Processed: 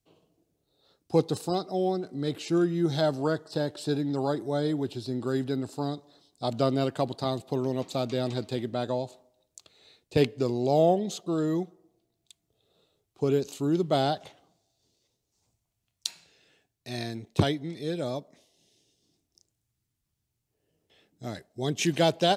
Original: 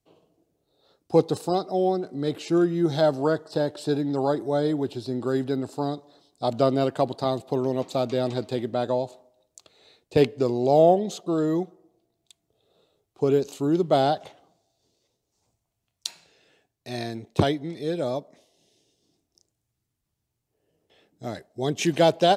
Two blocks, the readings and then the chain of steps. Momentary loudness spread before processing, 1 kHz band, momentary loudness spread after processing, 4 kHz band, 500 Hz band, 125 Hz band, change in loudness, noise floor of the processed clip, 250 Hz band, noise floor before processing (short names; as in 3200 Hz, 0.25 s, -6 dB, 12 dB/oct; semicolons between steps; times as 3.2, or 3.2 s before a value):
12 LU, -5.0 dB, 11 LU, -0.5 dB, -5.0 dB, -1.0 dB, -4.0 dB, -81 dBFS, -3.0 dB, -80 dBFS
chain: bell 630 Hz -5.5 dB 2.4 oct